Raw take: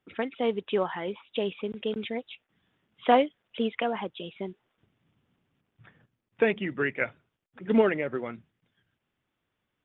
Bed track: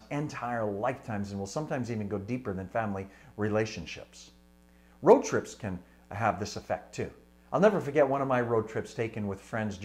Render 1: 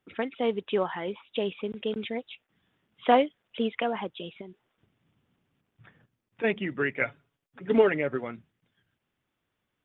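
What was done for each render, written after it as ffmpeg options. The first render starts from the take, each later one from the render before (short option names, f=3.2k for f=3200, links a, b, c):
-filter_complex "[0:a]asplit=3[a][b][c];[a]afade=t=out:st=4.4:d=0.02[d];[b]acompressor=threshold=-42dB:ratio=3:attack=3.2:release=140:knee=1:detection=peak,afade=t=in:st=4.4:d=0.02,afade=t=out:st=6.43:d=0.02[e];[c]afade=t=in:st=6.43:d=0.02[f];[d][e][f]amix=inputs=3:normalize=0,asettb=1/sr,asplit=3[g][h][i];[g]atrim=end=6.944[j];[h]atrim=start=6.94:end=8.24,asetpts=PTS-STARTPTS,afade=t=in:d=0.004:c=qsin,afade=t=out:st=1.296:d=0.004:c=qsin,aecho=1:1:7.1:0.47,atrim=end_sample=57330[k];[i]atrim=start=8.236[l];[j][k]acrossfade=d=0.004:c1=hsin:c2=qsin[m];[m][l]acrossfade=d=0.004:c1=qsin:c2=hsin"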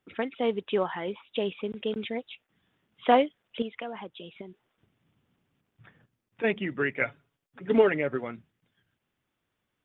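-filter_complex "[0:a]asettb=1/sr,asplit=3[a][b][c];[a]atrim=end=3.624[d];[b]atrim=start=3.62:end=4.39,asetpts=PTS-STARTPTS,afade=t=in:d=0.004:c=qsin,afade=t=out:st=0.766:d=0.004:c=qsin,acompressor=threshold=-47dB:ratio=1.5:attack=3.2:release=140:knee=1:detection=peak[e];[c]atrim=start=4.386[f];[d][e]acrossfade=d=0.004:c1=hsin:c2=qsin[g];[g][f]acrossfade=d=0.004:c1=qsin:c2=hsin"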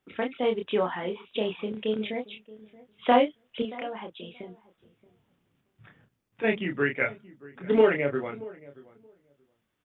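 -filter_complex "[0:a]asplit=2[a][b];[b]adelay=28,volume=-4dB[c];[a][c]amix=inputs=2:normalize=0,asplit=2[d][e];[e]adelay=627,lowpass=f=900:p=1,volume=-19dB,asplit=2[f][g];[g]adelay=627,lowpass=f=900:p=1,volume=0.16[h];[d][f][h]amix=inputs=3:normalize=0"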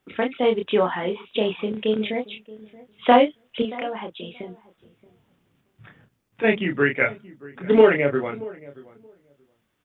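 -af "volume=6dB,alimiter=limit=-2dB:level=0:latency=1"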